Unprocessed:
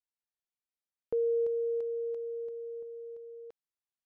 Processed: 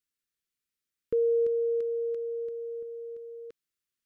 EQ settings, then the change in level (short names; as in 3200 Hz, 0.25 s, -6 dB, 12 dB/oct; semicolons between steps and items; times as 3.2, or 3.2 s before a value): Butterworth band-stop 770 Hz, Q 1; +6.5 dB